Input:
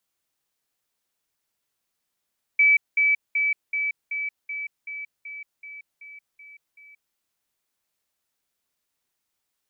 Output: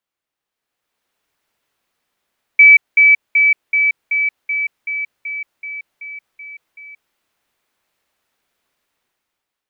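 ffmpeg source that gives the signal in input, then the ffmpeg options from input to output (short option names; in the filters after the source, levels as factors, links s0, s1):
-f lavfi -i "aevalsrc='pow(10,(-13.5-3*floor(t/0.38))/20)*sin(2*PI*2300*t)*clip(min(mod(t,0.38),0.18-mod(t,0.38))/0.005,0,1)':d=4.56:s=44100"
-af "bass=f=250:g=-4,treble=f=4000:g=-10,dynaudnorm=f=260:g=7:m=4.73"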